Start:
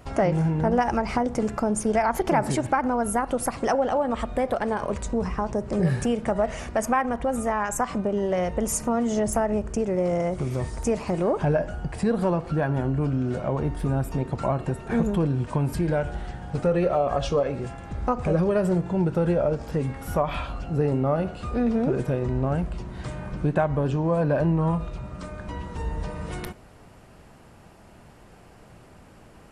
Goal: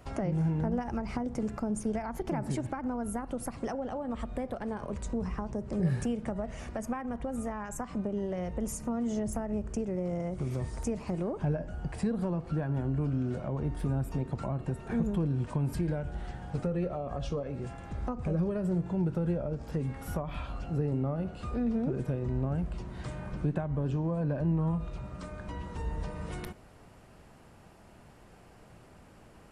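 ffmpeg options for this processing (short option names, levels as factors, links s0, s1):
-filter_complex "[0:a]acrossover=split=310[s0][s1];[s1]acompressor=threshold=0.0158:ratio=2.5[s2];[s0][s2]amix=inputs=2:normalize=0,volume=0.562"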